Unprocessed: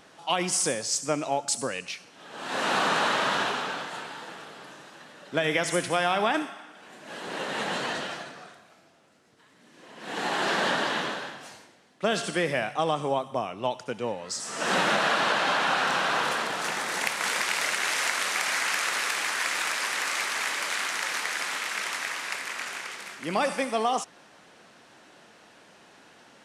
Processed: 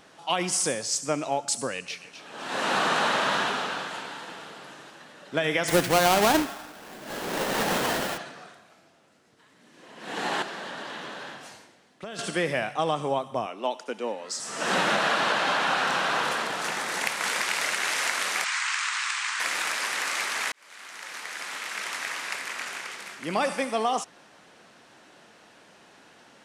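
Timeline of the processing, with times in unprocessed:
1.76–4.92 split-band echo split 2100 Hz, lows 0.143 s, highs 0.253 s, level -10 dB
5.68–8.18 half-waves squared off
10.42–12.19 compressor, threshold -34 dBFS
13.46–14.4 steep high-pass 220 Hz
18.44–19.4 elliptic band-pass 1000–8300 Hz
20.52–22.16 fade in

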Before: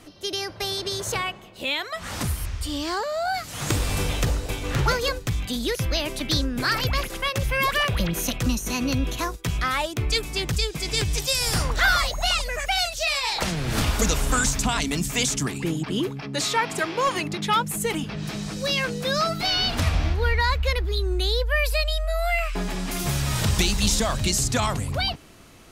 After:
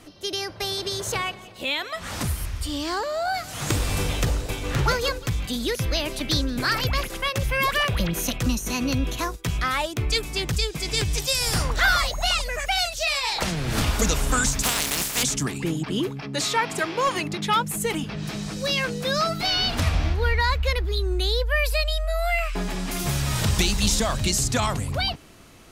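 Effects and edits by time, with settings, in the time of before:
0.59–6.74 feedback echo 0.176 s, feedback 50%, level -20 dB
14.62–15.22 spectral contrast lowered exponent 0.27

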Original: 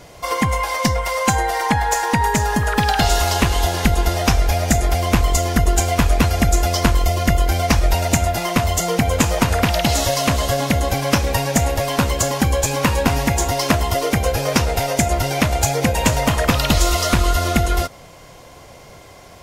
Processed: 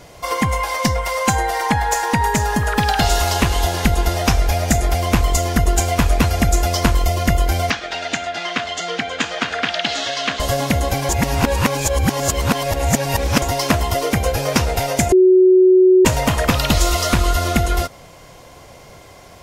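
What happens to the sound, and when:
7.7–10.4 speaker cabinet 360–5700 Hz, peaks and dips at 360 Hz -4 dB, 550 Hz -9 dB, 940 Hz -9 dB, 1600 Hz +5 dB, 3300 Hz +5 dB, 5400 Hz -4 dB
11.09–13.42 reverse
15.12–16.05 bleep 371 Hz -7 dBFS

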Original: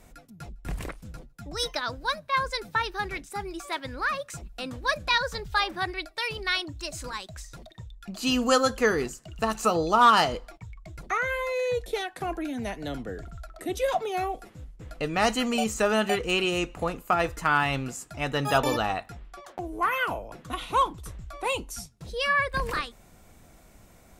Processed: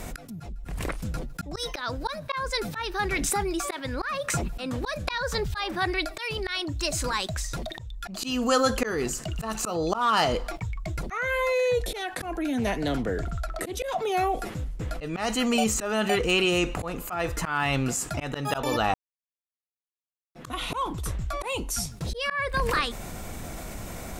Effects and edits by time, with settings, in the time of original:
3.12–3.54 backwards sustainer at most 36 dB/s
4.27–5.45 three-band squash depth 70%
12.58–13.74 Doppler distortion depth 0.19 ms
18.94–20.35 mute
whole clip: auto swell 0.369 s; fast leveller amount 50%

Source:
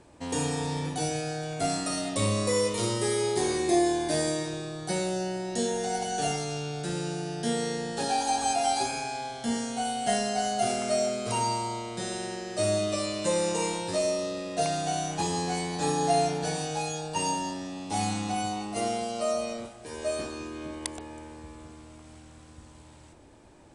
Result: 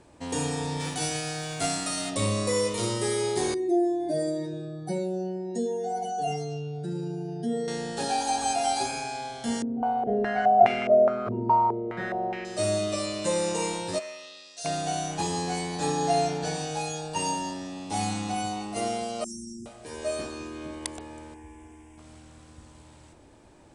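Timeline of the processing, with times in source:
0.79–2.09 spectral whitening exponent 0.6
3.54–7.68 spectral contrast raised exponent 1.9
9.62–12.45 stepped low-pass 4.8 Hz 320–2300 Hz
13.98–14.64 band-pass 1600 Hz -> 6400 Hz, Q 1.5
15.87–16.67 LPF 8600 Hz 24 dB/oct
19.24–19.66 brick-wall FIR band-stop 410–5000 Hz
21.34–21.98 fixed phaser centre 850 Hz, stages 8

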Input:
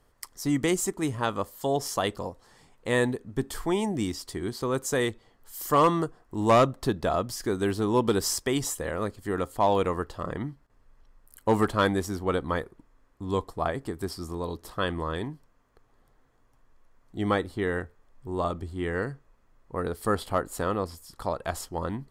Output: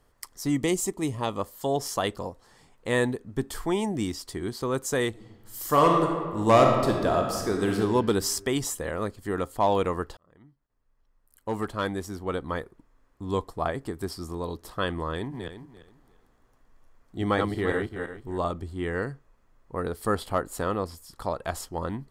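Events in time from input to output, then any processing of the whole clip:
0.55–1.4 bell 1500 Hz -14 dB 0.32 oct
5.09–7.78 reverb throw, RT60 1.6 s, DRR 1.5 dB
10.17–13.33 fade in
15.14–18.38 regenerating reverse delay 0.172 s, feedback 41%, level -3.5 dB

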